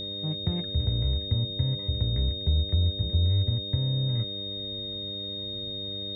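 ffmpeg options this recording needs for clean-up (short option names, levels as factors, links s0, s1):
-af "bandreject=f=99.4:t=h:w=4,bandreject=f=198.8:t=h:w=4,bandreject=f=298.2:t=h:w=4,bandreject=f=397.6:t=h:w=4,bandreject=f=497:t=h:w=4,bandreject=f=596.4:t=h:w=4,bandreject=f=3700:w=30"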